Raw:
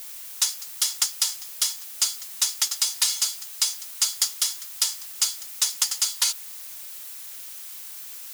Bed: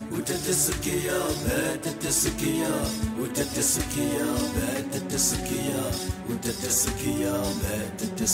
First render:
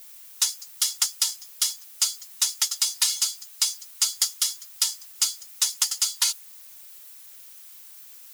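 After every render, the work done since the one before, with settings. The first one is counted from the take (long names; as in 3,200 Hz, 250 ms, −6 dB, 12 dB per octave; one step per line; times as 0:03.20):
broadband denoise 9 dB, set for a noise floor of −39 dBFS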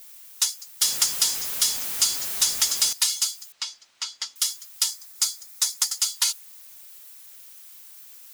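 0:00.81–0:02.93: converter with a step at zero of −25 dBFS
0:03.52–0:04.36: high-frequency loss of the air 150 metres
0:04.90–0:05.99: parametric band 2,900 Hz −7.5 dB 0.3 octaves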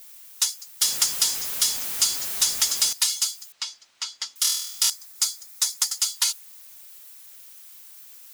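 0:04.42–0:04.90: flutter between parallel walls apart 4.2 metres, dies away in 0.71 s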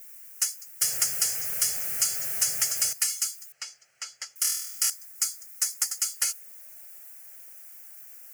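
high-pass filter sweep 120 Hz → 660 Hz, 0:04.79–0:06.81
phaser with its sweep stopped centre 1,000 Hz, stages 6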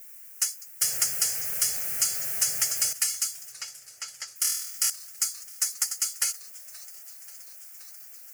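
feedback echo with a swinging delay time 531 ms, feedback 78%, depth 210 cents, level −21.5 dB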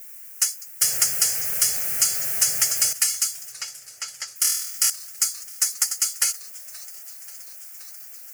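level +5 dB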